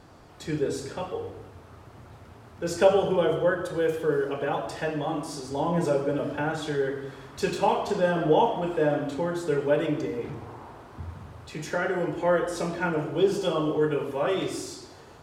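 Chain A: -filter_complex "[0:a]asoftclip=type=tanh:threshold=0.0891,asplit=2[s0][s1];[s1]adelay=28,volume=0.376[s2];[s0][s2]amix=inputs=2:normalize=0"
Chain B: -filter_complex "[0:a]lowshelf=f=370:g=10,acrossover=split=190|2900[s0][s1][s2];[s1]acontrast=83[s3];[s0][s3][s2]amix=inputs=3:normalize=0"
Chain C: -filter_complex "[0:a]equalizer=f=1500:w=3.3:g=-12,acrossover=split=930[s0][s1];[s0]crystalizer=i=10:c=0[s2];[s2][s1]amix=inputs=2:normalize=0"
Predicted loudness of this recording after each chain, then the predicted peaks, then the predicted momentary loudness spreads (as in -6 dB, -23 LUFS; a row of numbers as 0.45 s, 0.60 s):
-29.0 LUFS, -17.0 LUFS, -26.0 LUFS; -18.5 dBFS, -2.0 dBFS, -5.5 dBFS; 16 LU, 16 LU, 18 LU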